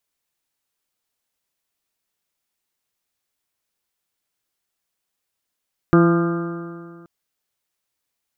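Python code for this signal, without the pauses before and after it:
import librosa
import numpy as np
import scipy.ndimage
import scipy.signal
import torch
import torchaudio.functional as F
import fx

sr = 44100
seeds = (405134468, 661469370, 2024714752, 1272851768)

y = fx.additive_stiff(sr, length_s=1.13, hz=169.0, level_db=-12.5, upper_db=(1.5, -11.0, -13, -19.5, -19.5, -7.5, -12.0, -18.0), decay_s=2.03, stiffness=0.00099)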